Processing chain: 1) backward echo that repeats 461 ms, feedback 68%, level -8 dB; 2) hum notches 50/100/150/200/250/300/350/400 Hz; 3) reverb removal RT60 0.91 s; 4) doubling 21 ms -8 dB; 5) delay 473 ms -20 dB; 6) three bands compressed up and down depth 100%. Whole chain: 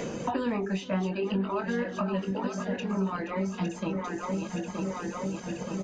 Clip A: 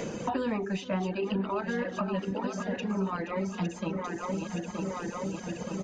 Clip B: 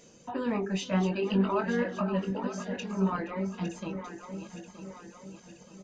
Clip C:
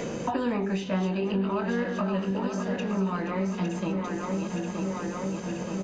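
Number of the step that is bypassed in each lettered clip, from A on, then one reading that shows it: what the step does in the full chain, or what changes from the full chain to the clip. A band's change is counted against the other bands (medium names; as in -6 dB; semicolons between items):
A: 4, loudness change -1.0 LU; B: 6, crest factor change +2.5 dB; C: 3, loudness change +2.0 LU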